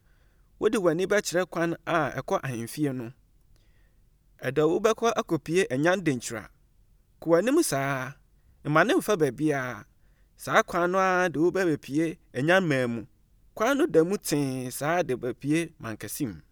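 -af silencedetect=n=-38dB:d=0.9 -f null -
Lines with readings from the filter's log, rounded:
silence_start: 3.10
silence_end: 4.42 | silence_duration: 1.32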